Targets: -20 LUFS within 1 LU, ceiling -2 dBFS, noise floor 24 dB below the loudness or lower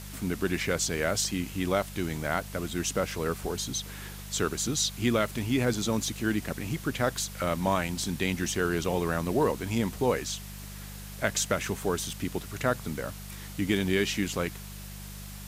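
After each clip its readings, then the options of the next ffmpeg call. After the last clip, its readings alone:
hum 50 Hz; highest harmonic 200 Hz; hum level -40 dBFS; noise floor -42 dBFS; noise floor target -54 dBFS; loudness -29.5 LUFS; peak level -9.5 dBFS; loudness target -20.0 LUFS
-> -af "bandreject=f=50:t=h:w=4,bandreject=f=100:t=h:w=4,bandreject=f=150:t=h:w=4,bandreject=f=200:t=h:w=4"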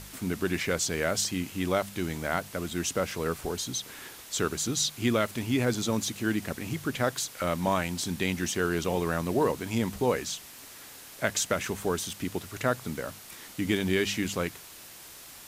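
hum not found; noise floor -48 dBFS; noise floor target -54 dBFS
-> -af "afftdn=nr=6:nf=-48"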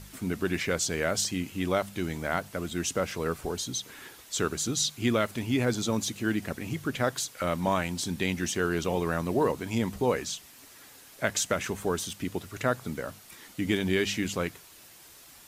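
noise floor -52 dBFS; noise floor target -54 dBFS
-> -af "afftdn=nr=6:nf=-52"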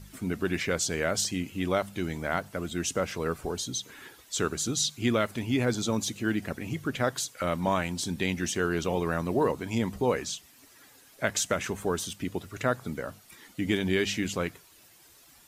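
noise floor -57 dBFS; loudness -30.0 LUFS; peak level -9.5 dBFS; loudness target -20.0 LUFS
-> -af "volume=3.16,alimiter=limit=0.794:level=0:latency=1"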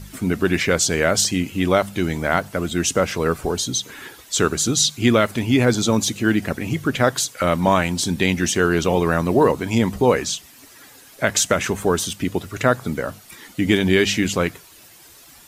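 loudness -20.0 LUFS; peak level -2.0 dBFS; noise floor -47 dBFS

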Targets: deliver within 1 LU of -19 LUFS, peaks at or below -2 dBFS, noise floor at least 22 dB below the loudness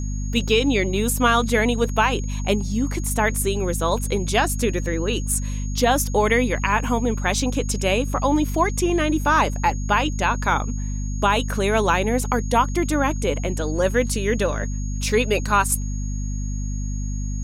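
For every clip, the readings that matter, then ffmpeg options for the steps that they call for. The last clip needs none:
hum 50 Hz; highest harmonic 250 Hz; hum level -23 dBFS; steady tone 6.6 kHz; tone level -39 dBFS; loudness -21.5 LUFS; peak level -5.5 dBFS; loudness target -19.0 LUFS
-> -af "bandreject=f=50:t=h:w=4,bandreject=f=100:t=h:w=4,bandreject=f=150:t=h:w=4,bandreject=f=200:t=h:w=4,bandreject=f=250:t=h:w=4"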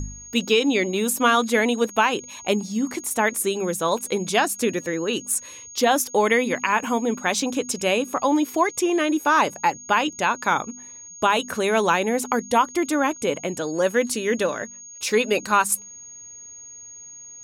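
hum not found; steady tone 6.6 kHz; tone level -39 dBFS
-> -af "bandreject=f=6600:w=30"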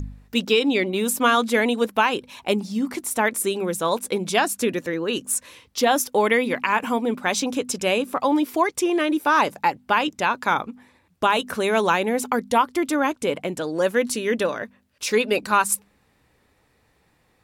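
steady tone not found; loudness -22.0 LUFS; peak level -6.5 dBFS; loudness target -19.0 LUFS
-> -af "volume=1.41"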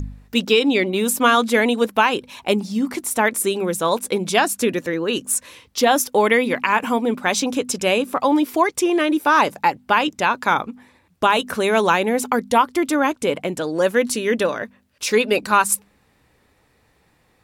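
loudness -19.5 LUFS; peak level -3.5 dBFS; noise floor -61 dBFS

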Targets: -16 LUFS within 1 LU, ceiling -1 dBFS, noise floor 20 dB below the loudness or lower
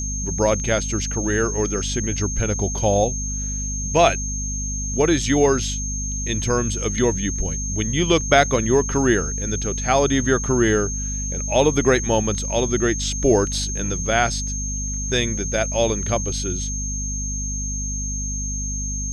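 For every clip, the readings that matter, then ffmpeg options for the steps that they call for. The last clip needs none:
hum 50 Hz; highest harmonic 250 Hz; hum level -25 dBFS; steady tone 6.4 kHz; tone level -27 dBFS; loudness -21.0 LUFS; peak level -3.0 dBFS; loudness target -16.0 LUFS
-> -af "bandreject=f=50:t=h:w=6,bandreject=f=100:t=h:w=6,bandreject=f=150:t=h:w=6,bandreject=f=200:t=h:w=6,bandreject=f=250:t=h:w=6"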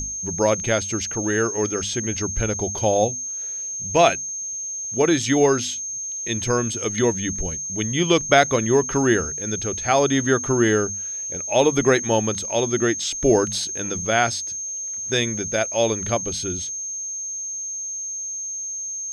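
hum not found; steady tone 6.4 kHz; tone level -27 dBFS
-> -af "bandreject=f=6400:w=30"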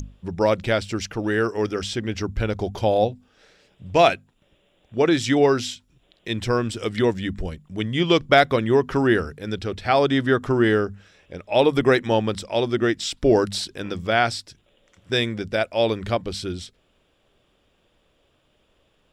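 steady tone not found; loudness -22.0 LUFS; peak level -3.0 dBFS; loudness target -16.0 LUFS
-> -af "volume=2,alimiter=limit=0.891:level=0:latency=1"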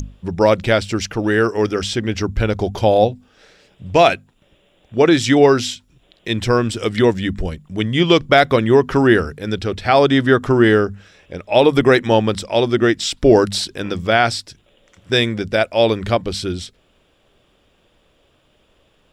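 loudness -16.5 LUFS; peak level -1.0 dBFS; noise floor -59 dBFS

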